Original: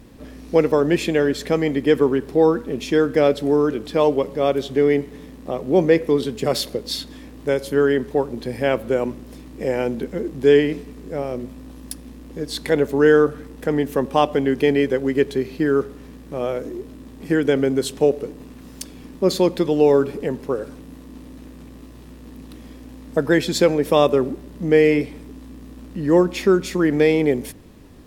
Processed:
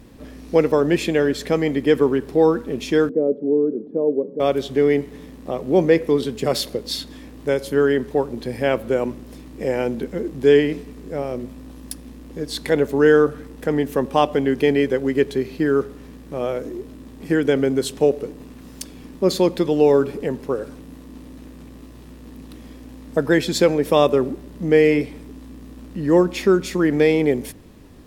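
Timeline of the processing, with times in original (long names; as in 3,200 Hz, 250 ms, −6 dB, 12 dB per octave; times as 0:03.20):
0:03.09–0:04.40: Chebyshev band-pass filter 200–460 Hz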